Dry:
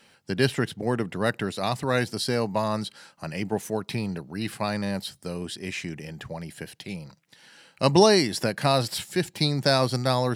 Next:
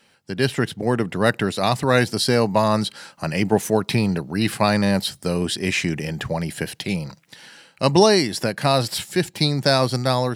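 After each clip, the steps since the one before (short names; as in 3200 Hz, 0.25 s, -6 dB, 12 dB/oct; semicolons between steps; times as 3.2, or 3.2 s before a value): AGC gain up to 12 dB; gain -1 dB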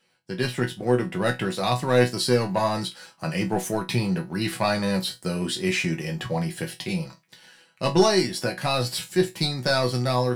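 sample leveller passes 1; resonator bank B2 sus4, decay 0.2 s; gain +4.5 dB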